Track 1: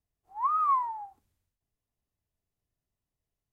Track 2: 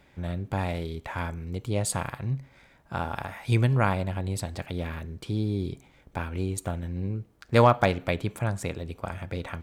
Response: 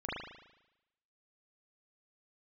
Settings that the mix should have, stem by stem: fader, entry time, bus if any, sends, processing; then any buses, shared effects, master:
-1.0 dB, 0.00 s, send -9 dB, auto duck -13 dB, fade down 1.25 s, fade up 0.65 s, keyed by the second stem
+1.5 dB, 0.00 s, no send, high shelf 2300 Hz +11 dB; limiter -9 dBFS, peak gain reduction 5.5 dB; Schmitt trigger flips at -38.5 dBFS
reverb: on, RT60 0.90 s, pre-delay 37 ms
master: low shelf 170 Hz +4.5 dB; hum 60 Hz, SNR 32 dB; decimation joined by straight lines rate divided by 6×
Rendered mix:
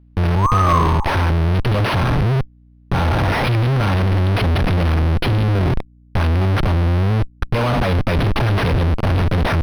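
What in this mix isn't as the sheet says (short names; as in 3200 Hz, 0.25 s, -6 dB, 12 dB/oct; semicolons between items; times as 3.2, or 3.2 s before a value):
stem 1 -1.0 dB -> +10.5 dB; stem 2 +1.5 dB -> +10.5 dB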